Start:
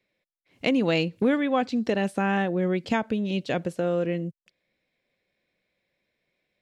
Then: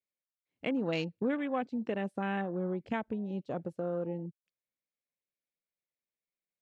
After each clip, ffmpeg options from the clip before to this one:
-af "afwtdn=0.0224,volume=0.355"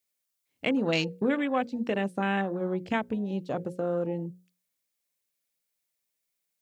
-af "highshelf=f=3800:g=10.5,bandreject=f=60:t=h:w=6,bandreject=f=120:t=h:w=6,bandreject=f=180:t=h:w=6,bandreject=f=240:t=h:w=6,bandreject=f=300:t=h:w=6,bandreject=f=360:t=h:w=6,bandreject=f=420:t=h:w=6,bandreject=f=480:t=h:w=6,bandreject=f=540:t=h:w=6,volume=1.88"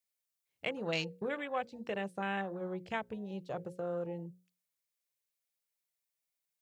-af "equalizer=f=260:t=o:w=0.51:g=-13.5,volume=0.473"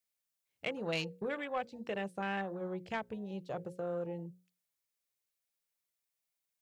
-af "asoftclip=type=tanh:threshold=0.0631"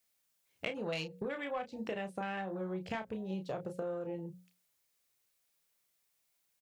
-filter_complex "[0:a]acompressor=threshold=0.00562:ratio=6,asplit=2[s0][s1];[s1]adelay=32,volume=0.398[s2];[s0][s2]amix=inputs=2:normalize=0,volume=2.66"

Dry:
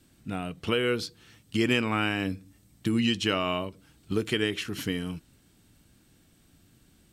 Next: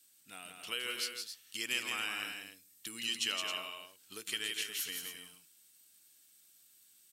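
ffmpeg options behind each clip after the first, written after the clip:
-filter_complex "[0:a]aderivative,asplit=2[s0][s1];[s1]aecho=0:1:166.2|268.2:0.562|0.355[s2];[s0][s2]amix=inputs=2:normalize=0,volume=1.26"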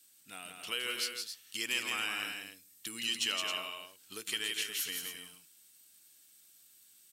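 -af "asoftclip=type=tanh:threshold=0.0708,volume=1.33"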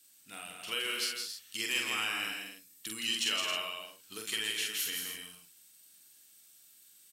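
-filter_complex "[0:a]asplit=2[s0][s1];[s1]adelay=46,volume=0.708[s2];[s0][s2]amix=inputs=2:normalize=0"

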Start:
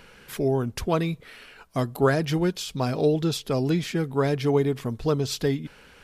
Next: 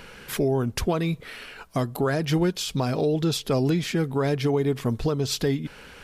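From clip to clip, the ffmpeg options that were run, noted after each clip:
-af "alimiter=limit=0.0891:level=0:latency=1:release=319,volume=2"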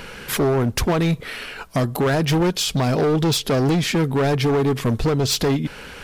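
-af "volume=15,asoftclip=hard,volume=0.0668,volume=2.51"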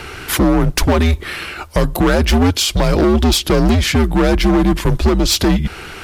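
-af "afreqshift=-89,volume=2"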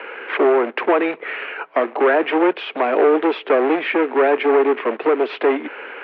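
-af "acrusher=bits=4:mode=log:mix=0:aa=0.000001,highpass=f=240:t=q:w=0.5412,highpass=f=240:t=q:w=1.307,lowpass=f=2500:t=q:w=0.5176,lowpass=f=2500:t=q:w=0.7071,lowpass=f=2500:t=q:w=1.932,afreqshift=84"

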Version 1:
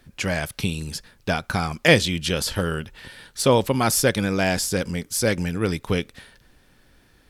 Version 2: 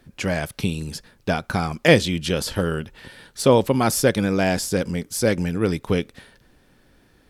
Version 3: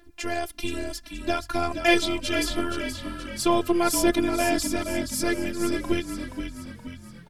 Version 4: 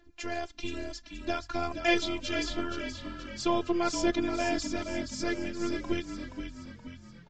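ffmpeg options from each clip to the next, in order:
-af "equalizer=f=320:w=0.36:g=5.5,volume=0.75"
-filter_complex "[0:a]afftfilt=real='hypot(re,im)*cos(PI*b)':imag='0':win_size=512:overlap=0.75,aphaser=in_gain=1:out_gain=1:delay=2.7:decay=0.41:speed=1.2:type=sinusoidal,asplit=2[s0][s1];[s1]asplit=6[s2][s3][s4][s5][s6][s7];[s2]adelay=474,afreqshift=-44,volume=0.398[s8];[s3]adelay=948,afreqshift=-88,volume=0.2[s9];[s4]adelay=1422,afreqshift=-132,volume=0.1[s10];[s5]adelay=1896,afreqshift=-176,volume=0.0495[s11];[s6]adelay=2370,afreqshift=-220,volume=0.0248[s12];[s7]adelay=2844,afreqshift=-264,volume=0.0124[s13];[s8][s9][s10][s11][s12][s13]amix=inputs=6:normalize=0[s14];[s0][s14]amix=inputs=2:normalize=0"
-af "volume=0.501" -ar 16000 -c:a libvorbis -b:a 48k

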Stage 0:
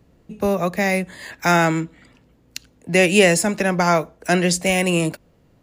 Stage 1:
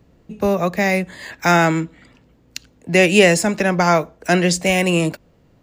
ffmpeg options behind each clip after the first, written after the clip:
-af "equalizer=f=11000:w=1.9:g=-9,volume=1.26"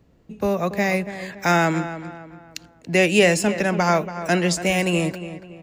-filter_complex "[0:a]asplit=2[s0][s1];[s1]adelay=283,lowpass=f=2800:p=1,volume=0.251,asplit=2[s2][s3];[s3]adelay=283,lowpass=f=2800:p=1,volume=0.41,asplit=2[s4][s5];[s5]adelay=283,lowpass=f=2800:p=1,volume=0.41,asplit=2[s6][s7];[s7]adelay=283,lowpass=f=2800:p=1,volume=0.41[s8];[s0][s2][s4][s6][s8]amix=inputs=5:normalize=0,volume=0.631"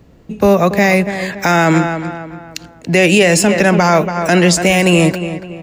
-af "alimiter=level_in=4.47:limit=0.891:release=50:level=0:latency=1,volume=0.891"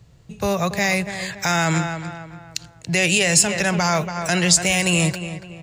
-af "equalizer=f=125:t=o:w=1:g=11,equalizer=f=250:t=o:w=1:g=-12,equalizer=f=500:t=o:w=1:g=-3,equalizer=f=4000:t=o:w=1:g=5,equalizer=f=8000:t=o:w=1:g=9,volume=0.422"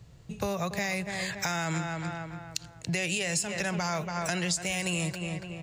-af "acompressor=threshold=0.0447:ratio=4,volume=0.794"

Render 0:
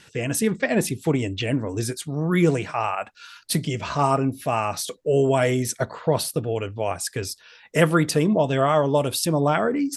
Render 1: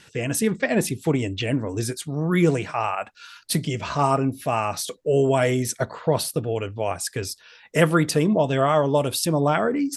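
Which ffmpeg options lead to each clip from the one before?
-af anull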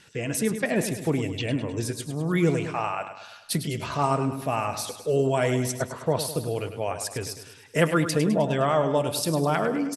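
-af "aeval=exprs='0.631*(cos(1*acos(clip(val(0)/0.631,-1,1)))-cos(1*PI/2))+0.0158*(cos(3*acos(clip(val(0)/0.631,-1,1)))-cos(3*PI/2))':c=same,aecho=1:1:103|206|309|412|515|618:0.316|0.168|0.0888|0.0471|0.025|0.0132,volume=0.708"

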